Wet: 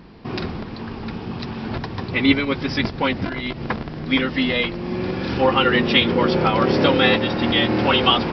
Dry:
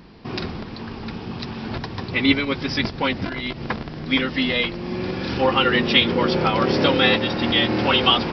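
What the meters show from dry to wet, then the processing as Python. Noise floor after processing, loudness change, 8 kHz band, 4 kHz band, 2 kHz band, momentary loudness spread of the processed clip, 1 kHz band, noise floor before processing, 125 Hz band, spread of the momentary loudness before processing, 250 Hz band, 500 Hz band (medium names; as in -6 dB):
-33 dBFS, +0.5 dB, no reading, -1.0 dB, +0.5 dB, 14 LU, +1.5 dB, -35 dBFS, +2.0 dB, 15 LU, +2.0 dB, +2.0 dB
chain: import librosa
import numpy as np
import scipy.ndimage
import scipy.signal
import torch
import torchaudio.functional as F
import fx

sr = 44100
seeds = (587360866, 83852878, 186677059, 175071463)

y = fx.high_shelf(x, sr, hz=3800.0, db=-7.0)
y = y * librosa.db_to_amplitude(2.0)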